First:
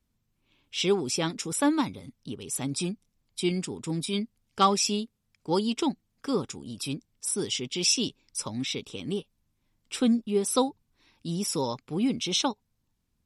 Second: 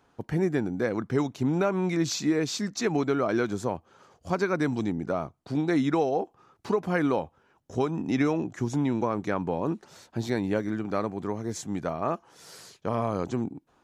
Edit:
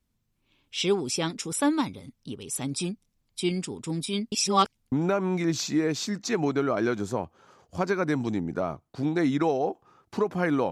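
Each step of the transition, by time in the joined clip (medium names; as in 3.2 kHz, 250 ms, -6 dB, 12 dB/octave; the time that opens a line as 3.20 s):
first
4.32–4.92 s: reverse
4.92 s: go over to second from 1.44 s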